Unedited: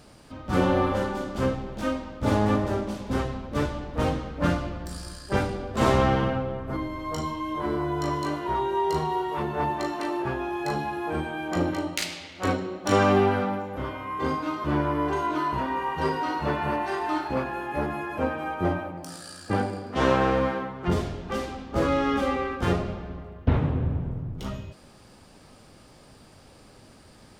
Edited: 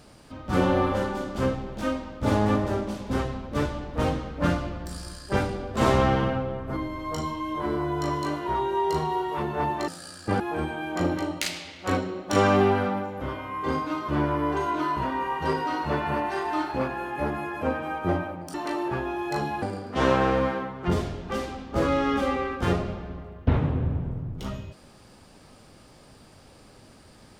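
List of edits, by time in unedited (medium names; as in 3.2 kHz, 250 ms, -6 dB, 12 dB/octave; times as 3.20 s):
9.88–10.96 s: swap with 19.10–19.62 s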